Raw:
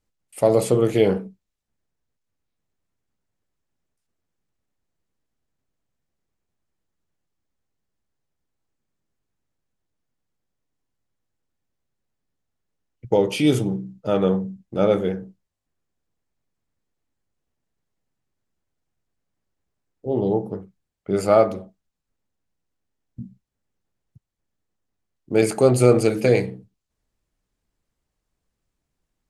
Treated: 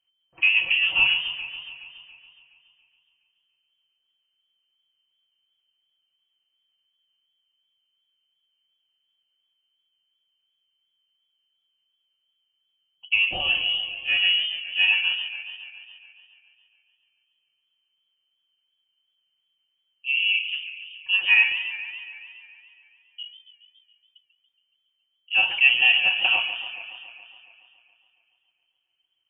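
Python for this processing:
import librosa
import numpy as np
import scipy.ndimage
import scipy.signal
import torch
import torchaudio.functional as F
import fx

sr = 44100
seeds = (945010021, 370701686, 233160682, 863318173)

y = x + 0.84 * np.pad(x, (int(5.1 * sr / 1000.0), 0))[:len(x)]
y = fx.freq_invert(y, sr, carrier_hz=3100)
y = fx.echo_warbled(y, sr, ms=140, feedback_pct=70, rate_hz=2.8, cents=135, wet_db=-12.0)
y = y * 10.0 ** (-5.0 / 20.0)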